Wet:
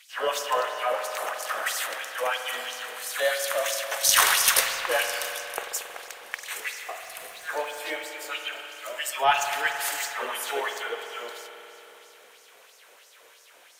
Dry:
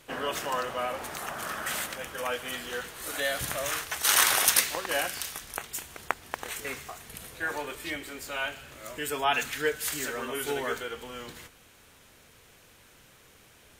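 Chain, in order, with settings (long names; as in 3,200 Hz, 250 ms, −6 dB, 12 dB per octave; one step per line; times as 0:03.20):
auto-filter high-pass sine 3 Hz 480–5,700 Hz
in parallel at −11.5 dB: asymmetric clip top −22 dBFS
on the sum: spring reverb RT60 3.5 s, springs 45 ms, chirp 60 ms, DRR 4.5 dB
0:07.01–0:08.05: surface crackle 490 per second −40 dBFS
level −1 dB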